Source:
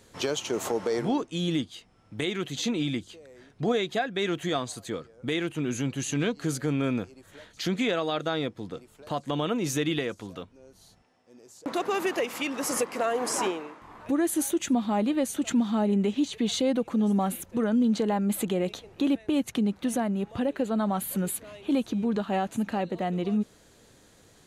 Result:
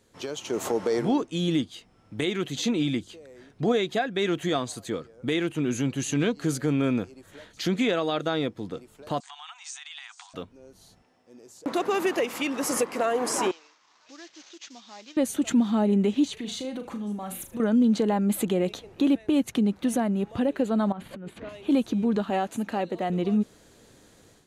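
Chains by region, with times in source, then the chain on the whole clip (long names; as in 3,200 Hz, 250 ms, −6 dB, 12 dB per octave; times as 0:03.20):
0:09.20–0:10.34: high-shelf EQ 2,800 Hz +8.5 dB + downward compressor 16 to 1, threshold −34 dBFS + linear-phase brick-wall band-pass 710–9,100 Hz
0:13.51–0:15.17: variable-slope delta modulation 32 kbit/s + first difference
0:16.33–0:17.60: parametric band 320 Hz −6 dB 2 octaves + downward compressor, threshold −33 dBFS + flutter between parallel walls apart 6.6 metres, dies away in 0.28 s
0:20.92–0:21.49: compressor whose output falls as the input rises −37 dBFS + low-pass filter 2,700 Hz
0:22.30–0:23.10: bass and treble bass −7 dB, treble +1 dB + one half of a high-frequency compander decoder only
whole clip: parametric band 300 Hz +2.5 dB 1.6 octaves; automatic gain control gain up to 9.5 dB; level −8.5 dB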